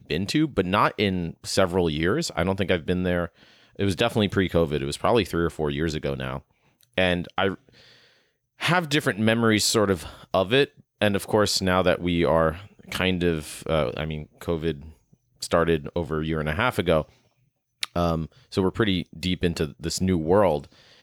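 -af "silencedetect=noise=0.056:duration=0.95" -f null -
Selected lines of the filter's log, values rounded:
silence_start: 7.54
silence_end: 8.62 | silence_duration: 1.08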